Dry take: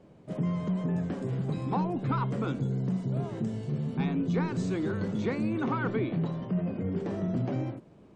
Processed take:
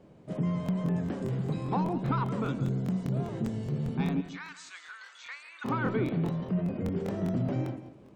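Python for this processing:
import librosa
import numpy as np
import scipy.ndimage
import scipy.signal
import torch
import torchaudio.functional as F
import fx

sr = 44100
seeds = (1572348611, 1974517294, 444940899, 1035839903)

y = fx.highpass(x, sr, hz=1300.0, slope=24, at=(4.2, 5.64), fade=0.02)
y = fx.echo_feedback(y, sr, ms=164, feedback_pct=24, wet_db=-13.5)
y = fx.buffer_crackle(y, sr, first_s=0.64, period_s=0.2, block=1024, kind='repeat')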